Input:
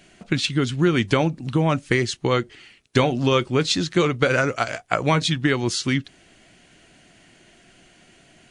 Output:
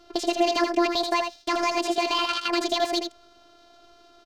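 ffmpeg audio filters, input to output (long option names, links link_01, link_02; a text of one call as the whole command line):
ffmpeg -i in.wav -filter_complex "[0:a]afftfilt=real='hypot(re,im)*cos(PI*b)':imag='0':win_size=1024:overlap=0.75,equalizer=frequency=2300:width=1.6:gain=6.5,alimiter=limit=-12.5dB:level=0:latency=1:release=76,adynamicsmooth=sensitivity=3:basefreq=1200,aecho=1:1:160:0.473,acrossover=split=2900[link_01][link_02];[link_02]acompressor=threshold=-51dB:ratio=4:attack=1:release=60[link_03];[link_01][link_03]amix=inputs=2:normalize=0,asetrate=88200,aresample=44100,volume=3.5dB" out.wav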